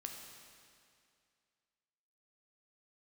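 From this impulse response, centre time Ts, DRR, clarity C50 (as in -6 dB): 69 ms, 2.0 dB, 3.5 dB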